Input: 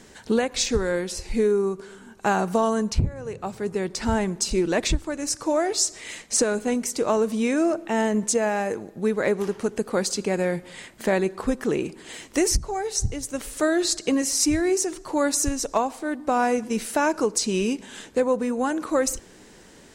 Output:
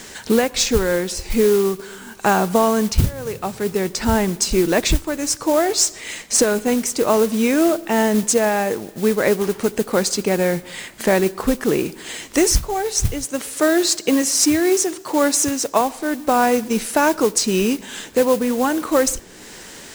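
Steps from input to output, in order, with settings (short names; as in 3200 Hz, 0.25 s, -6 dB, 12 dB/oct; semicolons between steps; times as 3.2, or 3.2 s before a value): modulation noise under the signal 16 dB; 13.24–15.81 HPF 140 Hz 12 dB/oct; mismatched tape noise reduction encoder only; gain +5.5 dB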